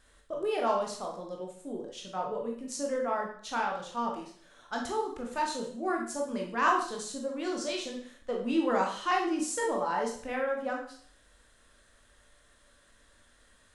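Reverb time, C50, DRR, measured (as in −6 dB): 0.55 s, 5.0 dB, −0.5 dB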